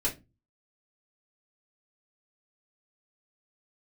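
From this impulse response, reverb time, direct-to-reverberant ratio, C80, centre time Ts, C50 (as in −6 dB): non-exponential decay, −6.0 dB, 22.0 dB, 17 ms, 13.5 dB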